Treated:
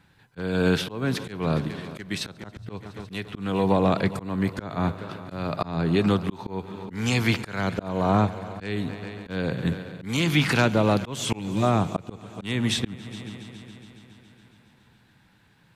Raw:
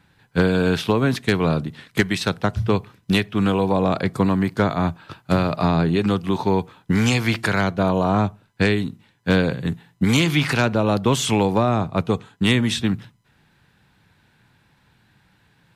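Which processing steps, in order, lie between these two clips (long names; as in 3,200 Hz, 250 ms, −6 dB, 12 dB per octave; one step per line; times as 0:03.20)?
gain on a spectral selection 0:11.39–0:11.63, 370–1,800 Hz −16 dB
echo machine with several playback heads 139 ms, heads all three, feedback 60%, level −22 dB
volume swells 312 ms
level −1.5 dB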